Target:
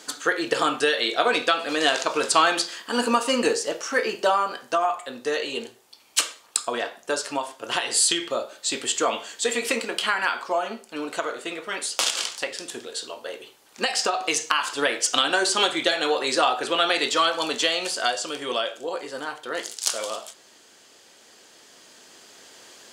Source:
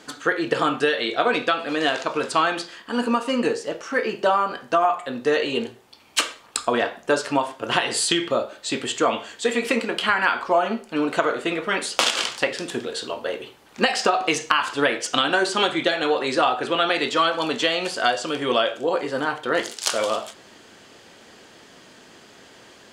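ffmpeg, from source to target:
-af "bass=f=250:g=-9,treble=f=4k:g=10,dynaudnorm=f=210:g=21:m=11.5dB,volume=-1dB"

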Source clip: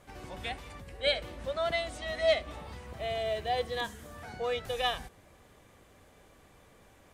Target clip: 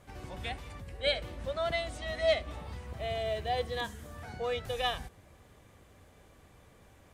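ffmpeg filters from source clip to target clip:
-af "equalizer=f=83:w=0.67:g=6,volume=-1.5dB"

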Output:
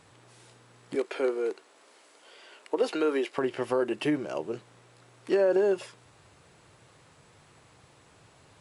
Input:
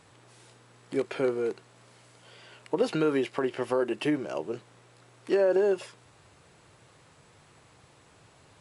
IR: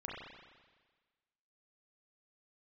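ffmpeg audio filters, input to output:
-filter_complex "[0:a]asettb=1/sr,asplit=3[a][b][c];[a]atrim=end=0.954[d];[b]atrim=start=0.95:end=3.38,asetpts=PTS-STARTPTS,afade=t=in:d=0.004:c=qsin,afade=t=out:st=2.426:d=0.004:c=qsin,highpass=f=290:w=0.5412,highpass=f=290:w=1.3066[e];[c]atrim=start=3.376[f];[d][e]acrossfade=d=0.004:c1=hsin:c2=qsin[g];[g][f]acrossfade=d=0.004:c1=qsin:c2=hsin"

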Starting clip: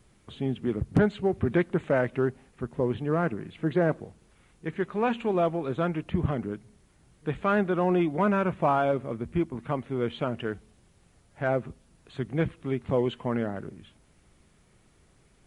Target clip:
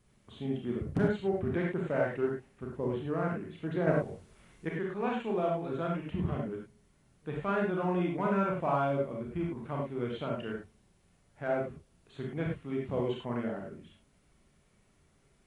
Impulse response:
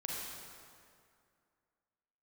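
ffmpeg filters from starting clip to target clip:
-filter_complex "[0:a]asettb=1/sr,asplit=3[a][b][c];[a]atrim=end=3.874[d];[b]atrim=start=3.87:end=4.69,asetpts=PTS-STARTPTS,afade=t=in:d=0.004:c=qsin,afade=t=out:st=0.816:d=0.004:c=qsin,acontrast=78[e];[c]atrim=start=4.686[f];[d][e]acrossfade=d=0.004:c1=hsin:c2=qsin[g];[g][f]acrossfade=d=0.004:c1=qsin:c2=hsin[h];[1:a]atrim=start_sample=2205,afade=t=out:st=0.19:d=0.01,atrim=end_sample=8820,asetrate=57330,aresample=44100[i];[h][i]afir=irnorm=-1:irlink=0,volume=-3dB"

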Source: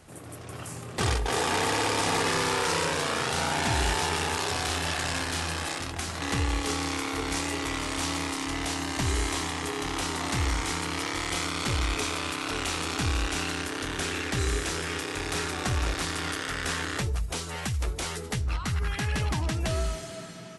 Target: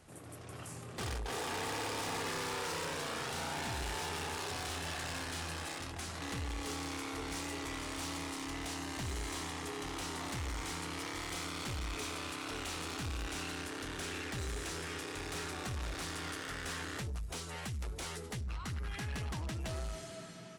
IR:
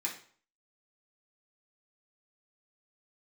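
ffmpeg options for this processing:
-af "asoftclip=type=tanh:threshold=-28dB,volume=-7dB"

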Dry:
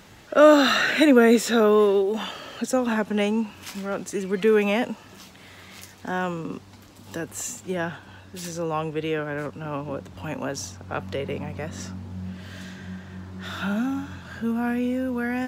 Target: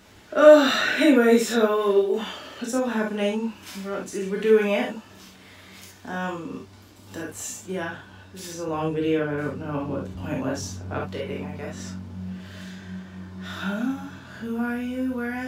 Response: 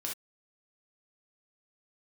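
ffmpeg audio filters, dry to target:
-filter_complex "[0:a]asettb=1/sr,asplit=3[a][b][c];[a]atrim=end=8.684[d];[b]atrim=start=8.68:end=11,asetpts=PTS-STARTPTS,afade=t=in:d=0.004:c=qsin,afade=t=out:st=2.316:d=0.004:c=qsin,lowshelf=f=380:g=8.5[e];[c]atrim=start=10.996[f];[d][e]acrossfade=d=0.004:c1=hsin:c2=qsin[g];[g][f]acrossfade=d=0.004:c1=qsin:c2=hsin[h];[1:a]atrim=start_sample=2205[i];[h][i]afir=irnorm=-1:irlink=0,volume=-2.5dB"

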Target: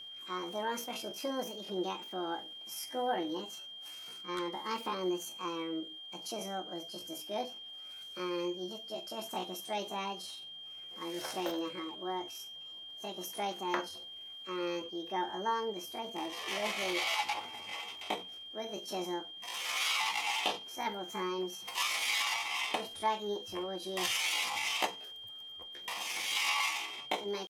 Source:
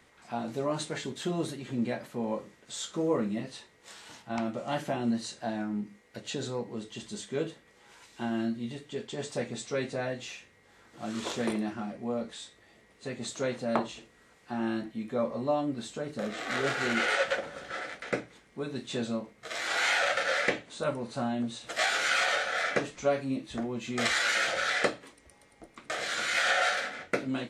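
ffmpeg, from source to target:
-af "asetrate=68011,aresample=44100,atempo=0.64842,aeval=exprs='val(0)+0.01*sin(2*PI*3200*n/s)':c=same,volume=-5dB"

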